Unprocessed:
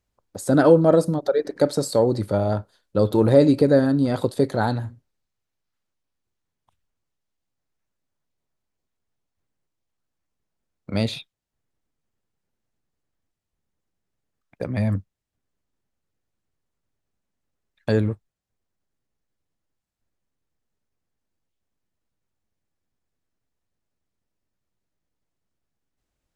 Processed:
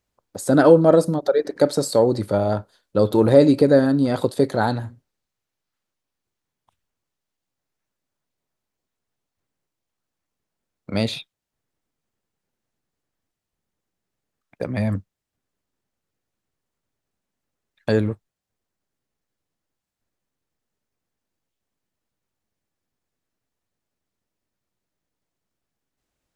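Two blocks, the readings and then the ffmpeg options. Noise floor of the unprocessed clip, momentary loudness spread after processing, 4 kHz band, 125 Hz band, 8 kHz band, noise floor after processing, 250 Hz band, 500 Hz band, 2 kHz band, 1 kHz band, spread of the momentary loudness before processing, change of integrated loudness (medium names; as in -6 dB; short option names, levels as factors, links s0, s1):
-81 dBFS, 16 LU, +2.5 dB, -0.5 dB, +2.5 dB, -84 dBFS, +1.5 dB, +2.0 dB, +2.5 dB, +2.5 dB, 14 LU, +2.0 dB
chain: -af "lowshelf=f=110:g=-7.5,volume=1.33"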